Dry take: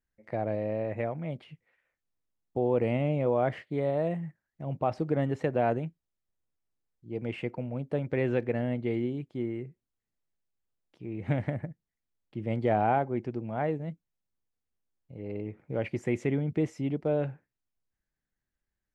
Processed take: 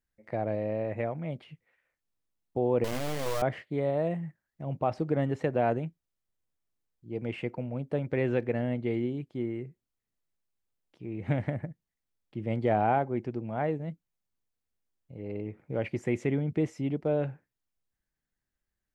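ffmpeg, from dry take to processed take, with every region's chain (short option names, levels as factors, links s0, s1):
-filter_complex "[0:a]asettb=1/sr,asplit=3[s0][s1][s2];[s0]atrim=end=2.844[s3];[s1]atrim=start=2.84:end=3.42,asetpts=PTS-STARTPTS,afade=t=in:d=0.004:c=qsin,afade=t=out:st=0.576:d=0.004:c=qsin,highpass=59,acrusher=bits=3:dc=4:mix=0:aa=0.000001[s4];[s2]atrim=start=3.416[s5];[s3][s4]acrossfade=d=0.004:c1=hsin:c2=qsin[s6];[s6][s5]acrossfade=d=0.004:c1=qsin:c2=hsin"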